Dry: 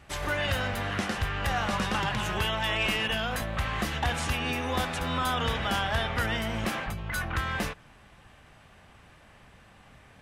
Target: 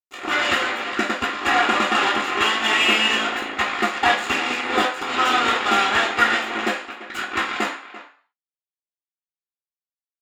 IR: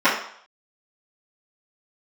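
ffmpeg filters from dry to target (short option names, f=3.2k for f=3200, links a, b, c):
-filter_complex "[0:a]acrusher=bits=3:mix=0:aa=0.5,asplit=2[a][b];[b]adelay=340,highpass=300,lowpass=3.4k,asoftclip=type=hard:threshold=-26dB,volume=-13dB[c];[a][c]amix=inputs=2:normalize=0[d];[1:a]atrim=start_sample=2205,asetrate=57330,aresample=44100[e];[d][e]afir=irnorm=-1:irlink=0,volume=-8dB"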